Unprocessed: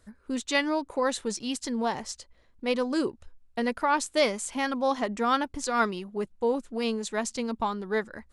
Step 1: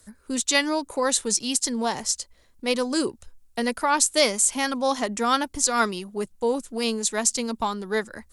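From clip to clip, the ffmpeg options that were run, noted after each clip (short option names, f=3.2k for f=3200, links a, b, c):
-filter_complex "[0:a]aemphasis=mode=production:type=cd,acrossover=split=120|850|4900[a][b][c][d];[d]acontrast=57[e];[a][b][c][e]amix=inputs=4:normalize=0,volume=2.5dB"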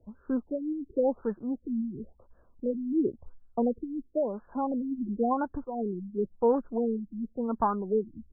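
-af "alimiter=limit=-12dB:level=0:latency=1:release=341,afftfilt=real='re*lt(b*sr/1024,330*pow(1800/330,0.5+0.5*sin(2*PI*0.95*pts/sr)))':imag='im*lt(b*sr/1024,330*pow(1800/330,0.5+0.5*sin(2*PI*0.95*pts/sr)))':win_size=1024:overlap=0.75"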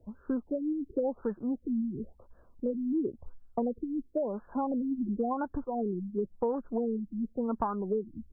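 -af "acompressor=threshold=-29dB:ratio=6,volume=2dB"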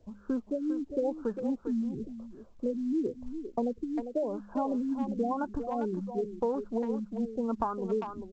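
-filter_complex "[0:a]bandreject=f=51.13:t=h:w=4,bandreject=f=102.26:t=h:w=4,bandreject=f=153.39:t=h:w=4,bandreject=f=204.52:t=h:w=4,asplit=2[a][b];[b]adelay=400,highpass=300,lowpass=3.4k,asoftclip=type=hard:threshold=-24.5dB,volume=-7dB[c];[a][c]amix=inputs=2:normalize=0" -ar 16000 -c:a pcm_mulaw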